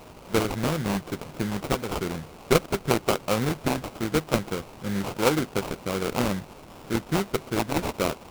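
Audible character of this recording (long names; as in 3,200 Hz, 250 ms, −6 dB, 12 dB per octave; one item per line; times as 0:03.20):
a quantiser's noise floor 8 bits, dither triangular
phaser sweep stages 6, 1 Hz, lowest notch 800–4,900 Hz
aliases and images of a low sample rate 1,800 Hz, jitter 20%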